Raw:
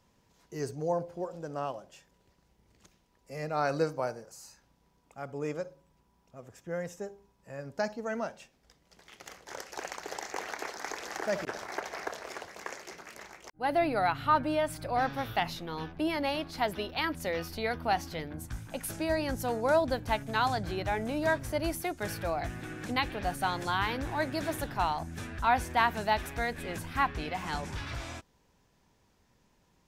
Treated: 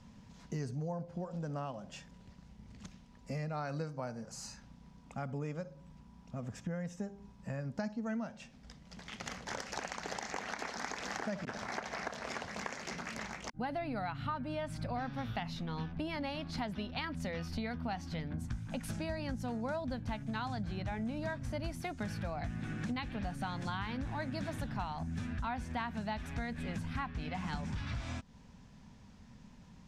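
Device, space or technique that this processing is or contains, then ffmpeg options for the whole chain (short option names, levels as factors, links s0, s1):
jukebox: -af "lowpass=7000,lowshelf=f=280:t=q:w=3:g=6,acompressor=threshold=0.00708:ratio=6,volume=2.11"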